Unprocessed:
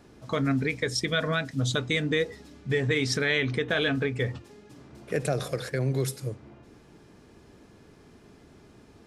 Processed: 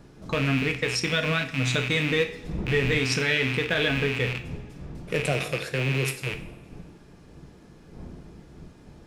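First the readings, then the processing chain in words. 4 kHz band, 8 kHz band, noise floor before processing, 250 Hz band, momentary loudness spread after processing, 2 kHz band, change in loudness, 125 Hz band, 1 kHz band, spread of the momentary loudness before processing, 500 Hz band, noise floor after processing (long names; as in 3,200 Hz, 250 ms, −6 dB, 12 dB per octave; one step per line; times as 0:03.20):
+3.0 dB, +1.5 dB, −55 dBFS, +1.0 dB, 17 LU, +4.0 dB, +2.5 dB, +2.0 dB, +2.0 dB, 8 LU, +1.0 dB, −51 dBFS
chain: loose part that buzzes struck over −37 dBFS, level −19 dBFS
wind on the microphone 180 Hz −42 dBFS
coupled-rooms reverb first 0.44 s, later 1.7 s, from −16 dB, DRR 6 dB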